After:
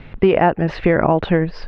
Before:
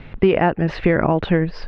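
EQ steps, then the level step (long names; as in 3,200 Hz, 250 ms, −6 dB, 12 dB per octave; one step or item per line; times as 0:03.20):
dynamic equaliser 740 Hz, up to +4 dB, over −26 dBFS, Q 0.95
0.0 dB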